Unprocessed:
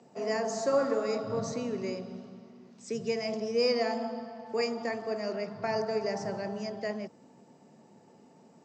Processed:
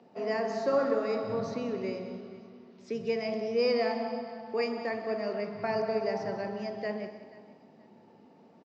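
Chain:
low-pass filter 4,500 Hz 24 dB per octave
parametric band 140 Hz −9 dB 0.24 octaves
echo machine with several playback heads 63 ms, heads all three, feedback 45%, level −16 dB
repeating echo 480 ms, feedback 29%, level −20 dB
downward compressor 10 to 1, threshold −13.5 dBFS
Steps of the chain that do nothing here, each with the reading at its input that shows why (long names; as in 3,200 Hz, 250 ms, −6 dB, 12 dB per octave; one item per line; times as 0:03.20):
downward compressor, threshold −13.5 dBFS: peak of its input −15.5 dBFS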